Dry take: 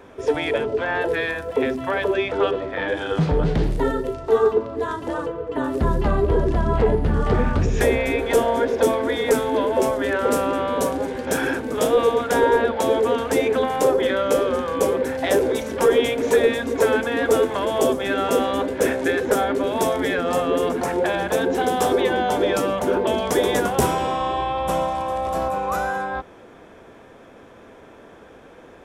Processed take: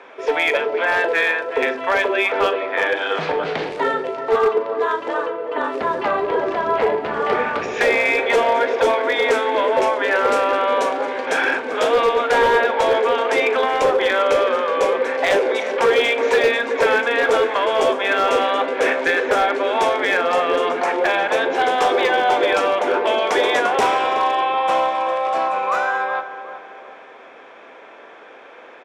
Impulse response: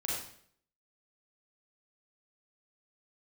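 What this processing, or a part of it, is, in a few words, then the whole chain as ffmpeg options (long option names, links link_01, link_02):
megaphone: -filter_complex "[0:a]asettb=1/sr,asplit=3[link_01][link_02][link_03];[link_01]atrim=end=3.034[link_04];[link_02]atrim=start=3.03:end=3.94,asetpts=PTS-STARTPTS,afade=type=in:duration=0.004:curve=qsin,afade=type=out:start_time=0.906:duration=0.004:curve=qsin,highshelf=frequency=3400:gain=3[link_05];[link_03]atrim=start=3.936[link_06];[link_04][link_05]acrossfade=duration=0.004:curve1=hsin:curve2=qsin[link_07];[link_07][link_06]acrossfade=duration=0.004:curve1=qsin:curve2=hsin,highpass=590,lowpass=4000,equalizer=frequency=2300:width_type=o:width=0.39:gain=5,asplit=2[link_08][link_09];[link_09]adelay=374,lowpass=frequency=1400:poles=1,volume=-10.5dB,asplit=2[link_10][link_11];[link_11]adelay=374,lowpass=frequency=1400:poles=1,volume=0.47,asplit=2[link_12][link_13];[link_13]adelay=374,lowpass=frequency=1400:poles=1,volume=0.47,asplit=2[link_14][link_15];[link_15]adelay=374,lowpass=frequency=1400:poles=1,volume=0.47,asplit=2[link_16][link_17];[link_17]adelay=374,lowpass=frequency=1400:poles=1,volume=0.47[link_18];[link_08][link_10][link_12][link_14][link_16][link_18]amix=inputs=6:normalize=0,asoftclip=type=hard:threshold=-17dB,asplit=2[link_19][link_20];[link_20]adelay=39,volume=-13.5dB[link_21];[link_19][link_21]amix=inputs=2:normalize=0,volume=6.5dB"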